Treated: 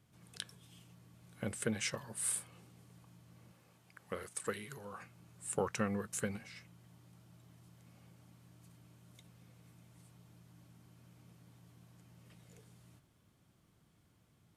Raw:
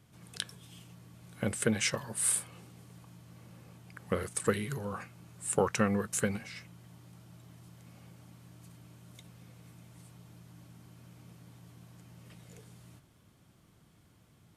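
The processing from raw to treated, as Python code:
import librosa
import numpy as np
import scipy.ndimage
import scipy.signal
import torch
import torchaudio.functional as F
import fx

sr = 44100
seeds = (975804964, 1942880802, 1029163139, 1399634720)

y = fx.low_shelf(x, sr, hz=300.0, db=-9.5, at=(3.52, 5.01))
y = y * librosa.db_to_amplitude(-7.0)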